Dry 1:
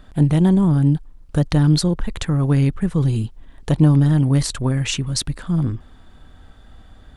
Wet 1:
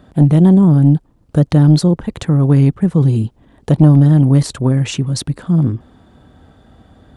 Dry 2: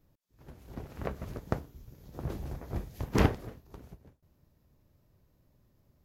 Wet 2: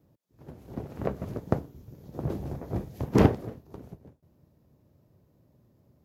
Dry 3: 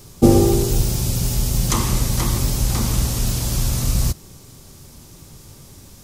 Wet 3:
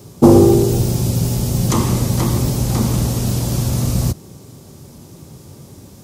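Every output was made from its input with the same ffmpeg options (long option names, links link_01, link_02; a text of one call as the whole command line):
ffmpeg -i in.wav -filter_complex "[0:a]highpass=100,acrossover=split=850|2600[link_01][link_02][link_03];[link_01]aeval=exprs='0.944*sin(PI/2*1.78*val(0)/0.944)':channel_layout=same[link_04];[link_04][link_02][link_03]amix=inputs=3:normalize=0,volume=-1.5dB" out.wav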